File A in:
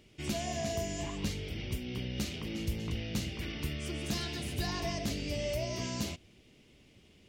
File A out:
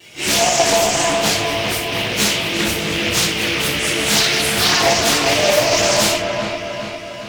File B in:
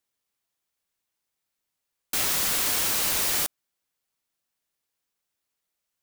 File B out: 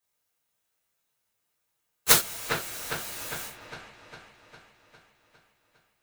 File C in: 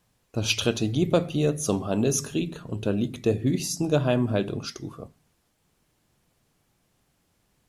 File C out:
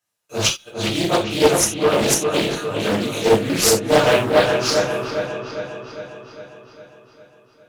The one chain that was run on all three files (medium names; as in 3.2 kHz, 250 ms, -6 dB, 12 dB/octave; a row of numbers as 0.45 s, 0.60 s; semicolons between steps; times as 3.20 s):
phase randomisation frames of 100 ms; gate with hold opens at -53 dBFS; high-pass 1.2 kHz 6 dB/octave; treble shelf 5.1 kHz +5 dB; in parallel at -10 dB: sample-rate reducer 6 kHz, jitter 0%; on the sum: inverted gate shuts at -17 dBFS, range -36 dB; on a send: feedback echo behind a low-pass 405 ms, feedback 58%, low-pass 2.6 kHz, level -4 dB; on the sum: gated-style reverb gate 110 ms falling, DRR -4 dB; loudspeaker Doppler distortion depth 0.47 ms; peak normalisation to -1.5 dBFS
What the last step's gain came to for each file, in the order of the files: +17.5 dB, +15.5 dB, +8.5 dB